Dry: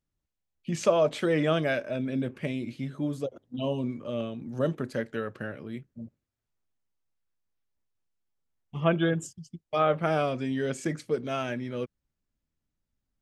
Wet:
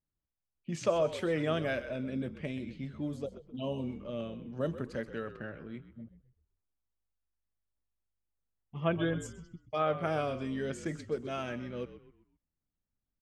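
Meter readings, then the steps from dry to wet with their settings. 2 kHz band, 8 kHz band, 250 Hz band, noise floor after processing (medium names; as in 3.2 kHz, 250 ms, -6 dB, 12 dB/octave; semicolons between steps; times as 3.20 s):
-5.5 dB, -7.0 dB, -6.0 dB, under -85 dBFS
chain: frequency-shifting echo 129 ms, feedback 40%, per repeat -51 Hz, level -13 dB; level-controlled noise filter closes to 1.7 kHz, open at -25 dBFS; trim -6 dB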